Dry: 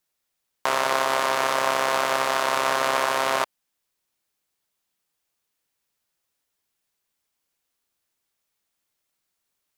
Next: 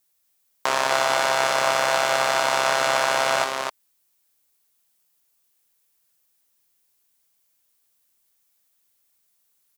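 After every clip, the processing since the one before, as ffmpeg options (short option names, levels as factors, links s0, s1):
-filter_complex "[0:a]acrossover=split=7700[s0][s1];[s1]acompressor=threshold=0.00398:ratio=4:attack=1:release=60[s2];[s0][s2]amix=inputs=2:normalize=0,highshelf=f=6800:g=12,aecho=1:1:61.22|253.6:0.282|0.562"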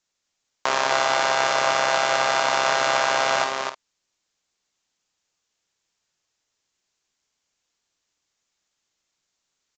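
-filter_complex "[0:a]asplit=2[s0][s1];[s1]adelay=50,volume=0.282[s2];[s0][s2]amix=inputs=2:normalize=0,aresample=16000,aresample=44100"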